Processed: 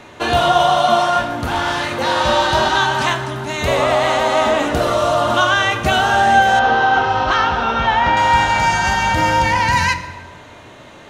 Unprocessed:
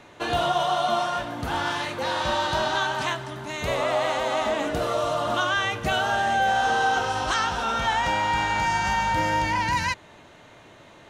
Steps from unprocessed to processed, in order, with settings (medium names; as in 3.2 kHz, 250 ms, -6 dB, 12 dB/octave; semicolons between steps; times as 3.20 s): reverberation RT60 1.4 s, pre-delay 6 ms, DRR 7.5 dB; 1.27–1.92 s: valve stage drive 18 dB, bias 0.4; 6.59–8.17 s: Gaussian low-pass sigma 2 samples; trim +8.5 dB